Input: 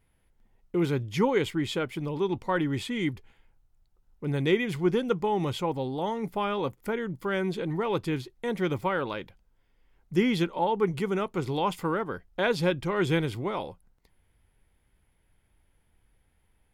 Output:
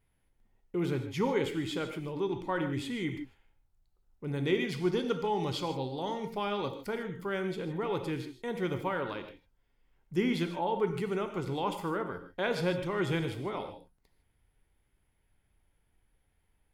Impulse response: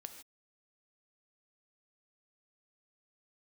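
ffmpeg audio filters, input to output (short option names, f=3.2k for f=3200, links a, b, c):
-filter_complex "[0:a]asettb=1/sr,asplit=3[a][b][c];[a]atrim=end=4.544[d];[b]atrim=start=4.54:end=6.95,asetpts=PTS-STARTPTS,afade=t=in:d=0.004:c=qsin,afade=t=out:st=2.406:d=0.004:c=qsin,equalizer=f=4.7k:t=o:w=0.79:g=11[e];[c]atrim=start=6.946[f];[d][e]acrossfade=d=0.004:c1=hsin:c2=qsin[g];[g][f]acrossfade=d=0.004:c1=qsin:c2=hsin[h];[1:a]atrim=start_sample=2205[i];[h][i]afir=irnorm=-1:irlink=0"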